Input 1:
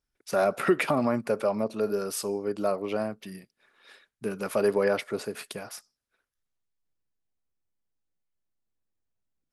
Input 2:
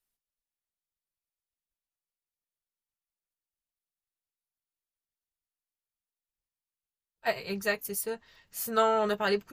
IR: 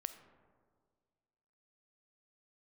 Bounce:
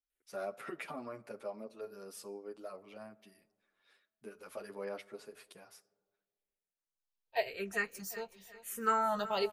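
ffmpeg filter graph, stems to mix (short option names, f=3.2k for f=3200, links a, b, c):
-filter_complex "[0:a]bandreject=f=50:t=h:w=6,bandreject=f=100:t=h:w=6,asplit=2[a][b];[b]adelay=8.9,afreqshift=1.1[c];[a][c]amix=inputs=2:normalize=1,volume=-16dB,asplit=2[d][e];[e]volume=-7dB[f];[1:a]highshelf=f=6.1k:g=-4.5,asplit=2[g][h];[h]afreqshift=-0.94[i];[g][i]amix=inputs=2:normalize=1,adelay=100,volume=-2.5dB,asplit=3[j][k][l];[k]volume=-17.5dB[m];[l]volume=-15dB[n];[2:a]atrim=start_sample=2205[o];[f][m]amix=inputs=2:normalize=0[p];[p][o]afir=irnorm=-1:irlink=0[q];[n]aecho=0:1:371|742|1113|1484|1855:1|0.39|0.152|0.0593|0.0231[r];[d][j][q][r]amix=inputs=4:normalize=0,equalizer=f=100:t=o:w=2.4:g=-6.5"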